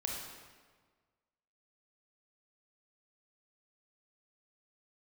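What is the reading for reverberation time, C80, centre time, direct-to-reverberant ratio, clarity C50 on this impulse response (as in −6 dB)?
1.5 s, 3.0 dB, 73 ms, −1.0 dB, 1.0 dB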